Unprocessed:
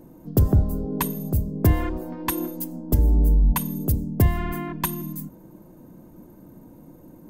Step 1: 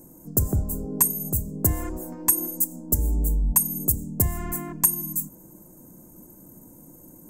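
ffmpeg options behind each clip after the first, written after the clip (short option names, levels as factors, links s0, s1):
-filter_complex "[0:a]highshelf=f=5300:t=q:w=3:g=14,asplit=2[s0][s1];[s1]acompressor=threshold=0.0794:ratio=6,volume=0.841[s2];[s0][s2]amix=inputs=2:normalize=0,volume=0.376"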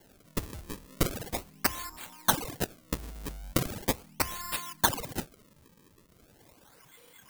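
-af "lowshelf=f=740:t=q:w=3:g=-13,acrusher=samples=35:mix=1:aa=0.000001:lfo=1:lforange=56:lforate=0.39,crystalizer=i=2:c=0,volume=0.422"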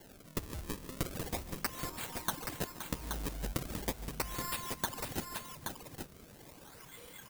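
-filter_complex "[0:a]acompressor=threshold=0.0126:ratio=5,asplit=2[s0][s1];[s1]aecho=0:1:145|521|825:0.15|0.299|0.501[s2];[s0][s2]amix=inputs=2:normalize=0,volume=1.5"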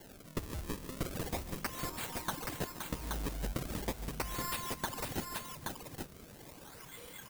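-af "asoftclip=type=tanh:threshold=0.0422,volume=1.26"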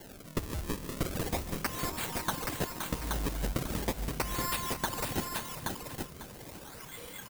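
-af "aecho=1:1:547:0.251,volume=1.68"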